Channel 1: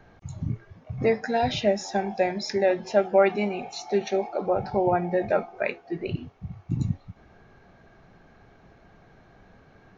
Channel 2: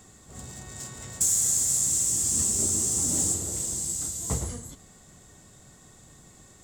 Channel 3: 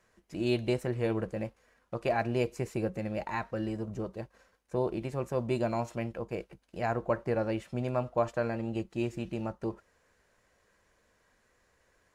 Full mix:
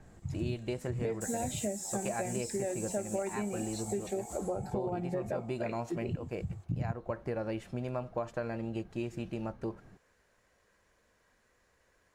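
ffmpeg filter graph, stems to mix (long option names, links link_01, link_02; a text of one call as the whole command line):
ffmpeg -i stem1.wav -i stem2.wav -i stem3.wav -filter_complex "[0:a]lowshelf=frequency=440:gain=11.5,volume=-10.5dB[link_01];[1:a]aecho=1:1:3.9:0.84,adynamicequalizer=threshold=0.0178:dfrequency=6100:dqfactor=0.7:tfrequency=6100:tqfactor=0.7:attack=5:release=100:ratio=0.375:range=3:mode=boostabove:tftype=highshelf,volume=-20dB[link_02];[2:a]volume=-1dB[link_03];[link_01][link_02][link_03]amix=inputs=3:normalize=0,acompressor=threshold=-31dB:ratio=6" out.wav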